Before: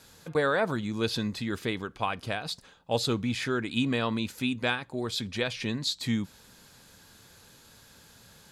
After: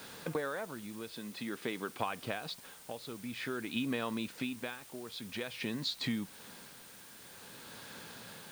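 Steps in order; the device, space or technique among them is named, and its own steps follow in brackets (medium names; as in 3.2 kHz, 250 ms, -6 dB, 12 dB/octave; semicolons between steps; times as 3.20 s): medium wave at night (band-pass 170–3800 Hz; compression 5:1, threshold -42 dBFS, peak gain reduction 18.5 dB; tremolo 0.5 Hz, depth 66%; whistle 9 kHz -70 dBFS; white noise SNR 15 dB); 1.13–2.00 s: high-pass 150 Hz 12 dB/octave; trim +8.5 dB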